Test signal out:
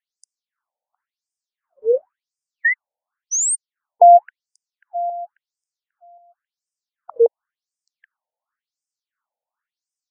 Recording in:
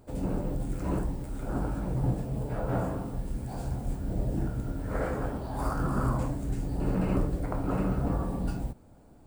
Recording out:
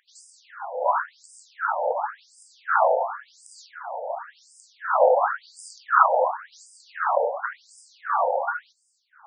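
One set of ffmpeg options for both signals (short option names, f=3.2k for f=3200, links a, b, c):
-af "apsyclip=23.5dB,highshelf=f=1.9k:t=q:w=3:g=-7,afftfilt=real='re*between(b*sr/1024,640*pow(6900/640,0.5+0.5*sin(2*PI*0.93*pts/sr))/1.41,640*pow(6900/640,0.5+0.5*sin(2*PI*0.93*pts/sr))*1.41)':imag='im*between(b*sr/1024,640*pow(6900/640,0.5+0.5*sin(2*PI*0.93*pts/sr))/1.41,640*pow(6900/640,0.5+0.5*sin(2*PI*0.93*pts/sr))*1.41)':win_size=1024:overlap=0.75,volume=-4.5dB"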